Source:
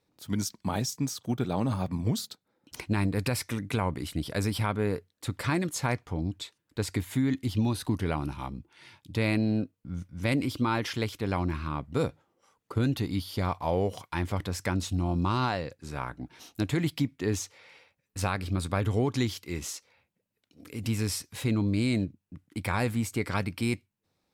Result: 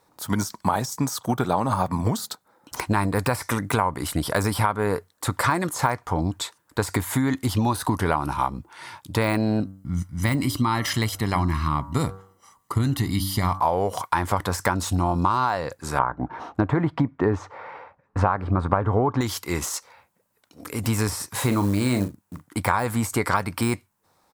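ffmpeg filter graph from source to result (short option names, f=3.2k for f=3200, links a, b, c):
-filter_complex "[0:a]asettb=1/sr,asplit=3[a][b][c];[a]atrim=end=9.604[d];[b]atrim=start=9.6:end=13.6,asetpts=PTS-STARTPTS,afade=t=in:d=0.004:c=qsin,afade=t=out:st=3.996:d=0.004:c=qsin,equalizer=f=930:t=o:w=1.1:g=-12,aecho=1:1:1:0.62,atrim=end_sample=176400,bandreject=f=96.01:t=h:w=4,bandreject=f=192.02:t=h:w=4,bandreject=f=288.03:t=h:w=4,bandreject=f=384.04:t=h:w=4,bandreject=f=480.05:t=h:w=4,bandreject=f=576.06:t=h:w=4,bandreject=f=672.07:t=h:w=4,bandreject=f=768.08:t=h:w=4,bandreject=f=864.09:t=h:w=4,bandreject=f=960.1:t=h:w=4,bandreject=f=1.05611k:t=h:w=4,bandreject=f=1.15212k:t=h:w=4,bandreject=f=1.24813k:t=h:w=4,bandreject=f=1.34414k:t=h:w=4,bandreject=f=1.44015k:t=h:w=4,bandreject=f=1.53616k:t=h:w=4,bandreject=f=1.63217k:t=h:w=4[e];[c]atrim=start=13.596[f];[d][e]acrossfade=d=0.004:c1=hsin:c2=qsin[g];[g][f]acrossfade=d=0.004:c1=qsin:c2=hsin,asettb=1/sr,asplit=3[h][i][j];[h]atrim=end=15.994[k];[i]atrim=start=15.99:end=19.21,asetpts=PTS-STARTPTS,afade=t=in:d=0.004:c=qsin,afade=t=out:st=3.216:d=0.004:c=qsin,lowpass=1.3k,acontrast=64[l];[j]atrim=start=19.206[m];[k][l]acrossfade=d=0.004:c1=hsin:c2=qsin[n];[n][m]acrossfade=d=0.004:c1=qsin:c2=hsin,asettb=1/sr,asplit=3[o][p][q];[o]atrim=end=21.084[r];[p]atrim=start=21.08:end=22.48,asetpts=PTS-STARTPTS,afade=t=in:d=0.004:c=qsin,afade=t=out:st=1.396:d=0.004:c=qsin,highpass=44,asplit=2[s][t];[t]adelay=40,volume=-10dB[u];[s][u]amix=inputs=2:normalize=0,atrim=end_sample=61740,acrusher=bits=7:mode=log:mix=0:aa=0.000001[v];[q]atrim=start=22.476[w];[r][v]acrossfade=d=0.004:c1=hsin:c2=qsin[x];[x][w]acrossfade=d=0.004:c1=qsin:c2=hsin,deesser=0.85,firequalizer=gain_entry='entry(260,0);entry(960,14);entry(2500,0);entry(8100,9)':delay=0.05:min_phase=1,acompressor=threshold=-25dB:ratio=6,volume=7dB"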